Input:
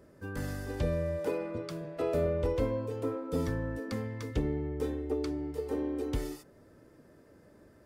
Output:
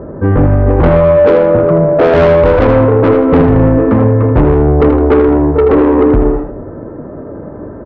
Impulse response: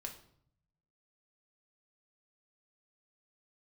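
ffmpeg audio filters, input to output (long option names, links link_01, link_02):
-filter_complex "[0:a]lowpass=frequency=1200:width=0.5412,lowpass=frequency=1200:width=1.3066,asoftclip=type=tanh:threshold=-34.5dB,aecho=1:1:80|160|240|320:0.447|0.13|0.0376|0.0109,asplit=2[link_01][link_02];[1:a]atrim=start_sample=2205,adelay=20[link_03];[link_02][link_03]afir=irnorm=-1:irlink=0,volume=-11.5dB[link_04];[link_01][link_04]amix=inputs=2:normalize=0,alimiter=level_in=32dB:limit=-1dB:release=50:level=0:latency=1,volume=-1dB"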